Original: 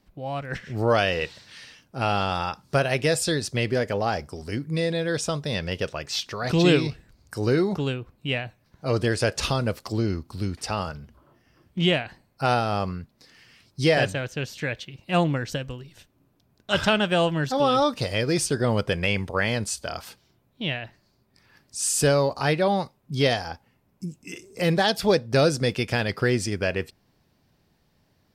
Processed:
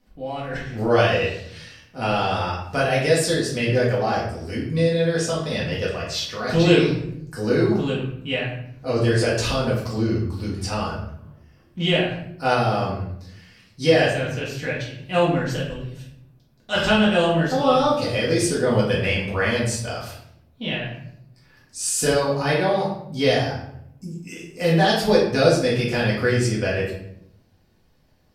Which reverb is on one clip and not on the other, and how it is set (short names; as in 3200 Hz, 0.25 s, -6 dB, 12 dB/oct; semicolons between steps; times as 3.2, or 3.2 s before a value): shoebox room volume 140 m³, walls mixed, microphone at 1.9 m; gain -4.5 dB